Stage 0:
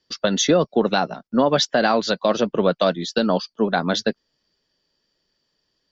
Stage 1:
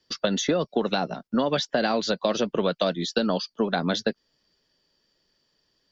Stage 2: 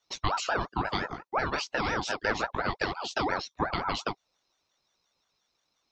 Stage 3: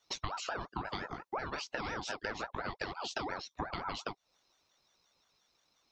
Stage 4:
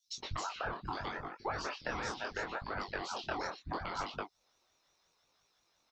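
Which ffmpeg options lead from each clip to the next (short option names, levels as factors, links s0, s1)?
-filter_complex "[0:a]acrossover=split=700|1800[s0][s1][s2];[s0]acompressor=threshold=0.0631:ratio=4[s3];[s1]acompressor=threshold=0.0158:ratio=4[s4];[s2]acompressor=threshold=0.0282:ratio=4[s5];[s3][s4][s5]amix=inputs=3:normalize=0,volume=1.19"
-af "flanger=delay=17:depth=5.7:speed=0.79,aeval=exprs='val(0)*sin(2*PI*840*n/s+840*0.4/5.7*sin(2*PI*5.7*n/s))':c=same"
-af "acompressor=threshold=0.0126:ratio=6,volume=1.33"
-filter_complex "[0:a]flanger=delay=20:depth=6.2:speed=0.74,acrossover=split=210|3900[s0][s1][s2];[s0]adelay=70[s3];[s1]adelay=120[s4];[s3][s4][s2]amix=inputs=3:normalize=0,volume=1.5"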